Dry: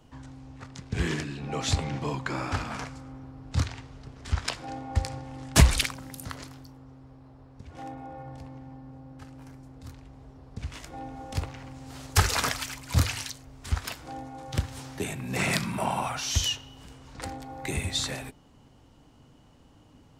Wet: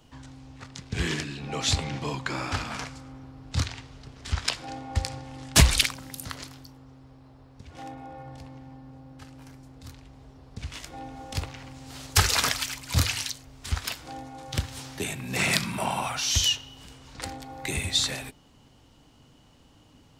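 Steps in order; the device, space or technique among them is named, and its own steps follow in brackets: presence and air boost (bell 3700 Hz +6 dB 1.9 oct; high shelf 9200 Hz +6.5 dB); gain -1 dB

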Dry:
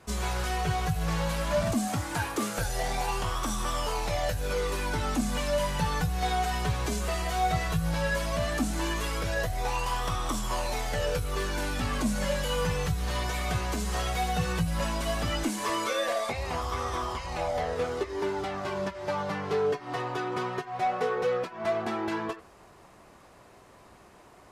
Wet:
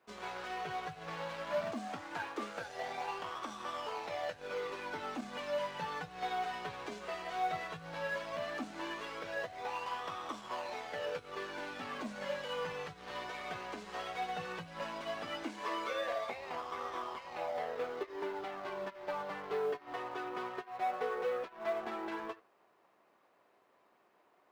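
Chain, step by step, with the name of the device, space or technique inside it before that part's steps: phone line with mismatched companding (BPF 320–3400 Hz; G.711 law mismatch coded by A); gain -6 dB

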